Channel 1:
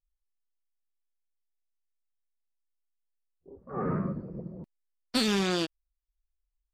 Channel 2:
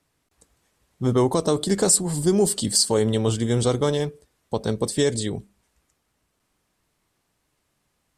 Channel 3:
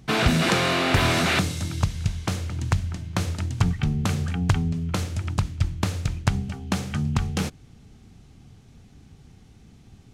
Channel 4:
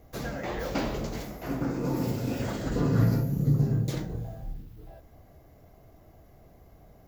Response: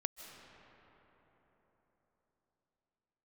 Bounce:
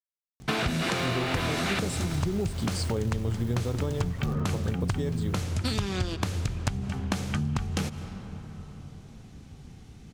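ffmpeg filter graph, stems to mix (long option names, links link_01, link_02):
-filter_complex "[0:a]adelay=500,volume=-3dB,asplit=2[link_01][link_02];[link_02]volume=-3dB[link_03];[1:a]aemphasis=mode=reproduction:type=bsi,acrusher=bits=6:mix=0:aa=0.000001,volume=-6dB[link_04];[2:a]adelay=400,volume=-1dB,asplit=2[link_05][link_06];[link_06]volume=-5dB[link_07];[3:a]aeval=exprs='(tanh(28.2*val(0)+0.7)-tanh(0.7))/28.2':channel_layout=same,acrusher=bits=4:mix=0:aa=0.000001,adelay=350,volume=-8dB[link_08];[4:a]atrim=start_sample=2205[link_09];[link_03][link_07]amix=inputs=2:normalize=0[link_10];[link_10][link_09]afir=irnorm=-1:irlink=0[link_11];[link_01][link_04][link_05][link_08][link_11]amix=inputs=5:normalize=0,acompressor=threshold=-25dB:ratio=6"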